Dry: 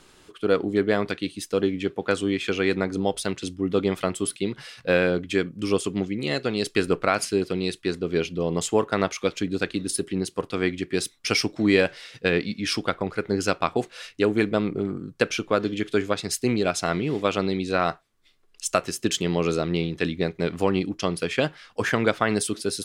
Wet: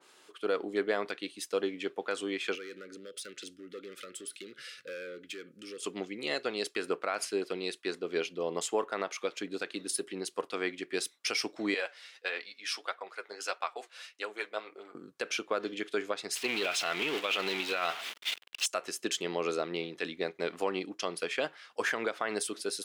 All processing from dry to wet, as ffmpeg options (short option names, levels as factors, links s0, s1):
-filter_complex "[0:a]asettb=1/sr,asplit=3[s0][s1][s2];[s0]atrim=end=2.554[s3];[s1]atrim=start=2.55:end=5.83,asetpts=PTS-STARTPTS,afade=t=in:d=0.004:c=qsin,afade=t=out:st=3.276:d=0.004:c=qsin,acompressor=threshold=0.0224:ratio=3:attack=3.2:release=140:knee=1:detection=peak,asoftclip=type=hard:threshold=0.0335,asuperstop=centerf=840:order=12:qfactor=1.3[s4];[s2]atrim=start=5.826[s5];[s3][s4]acrossfade=d=0.004:c1=hsin:c2=qsin[s6];[s6][s5]acrossfade=d=0.004:c1=qsin:c2=hsin,asettb=1/sr,asplit=3[s7][s8][s9];[s7]atrim=end=11.744[s10];[s8]atrim=start=11.74:end=14.95,asetpts=PTS-STARTPTS,afade=t=in:d=0.004:c=qsin,afade=t=out:st=3.206:d=0.004:c=qsin,highpass=640,flanger=delay=3.4:depth=6.5:regen=39:speed=1.6:shape=triangular[s11];[s9]atrim=start=14.946[s12];[s10][s11]acrossfade=d=0.004:c1=hsin:c2=qsin[s13];[s13][s12]acrossfade=d=0.004:c1=qsin:c2=hsin,asettb=1/sr,asplit=3[s14][s15][s16];[s14]atrim=end=16.354[s17];[s15]atrim=start=16.35:end=18.66,asetpts=PTS-STARTPTS,afade=t=in:d=0.004:c=qsin,afade=t=out:st=2.306:d=0.004:c=qsin,aeval=exprs='val(0)+0.5*0.0473*sgn(val(0))':c=same,equalizer=f=2900:w=0.95:g=15,agate=range=0.0224:threshold=0.1:ratio=3:release=100:detection=peak[s18];[s16]atrim=start=18.656[s19];[s17][s18]acrossfade=d=0.004:c1=hsin:c2=qsin[s20];[s20][s19]acrossfade=d=0.004:c1=qsin:c2=hsin,highpass=440,alimiter=limit=0.188:level=0:latency=1:release=96,adynamicequalizer=threshold=0.01:dfrequency=2500:dqfactor=0.7:tfrequency=2500:tqfactor=0.7:attack=5:release=100:ratio=0.375:range=2:mode=cutabove:tftype=highshelf,volume=0.631"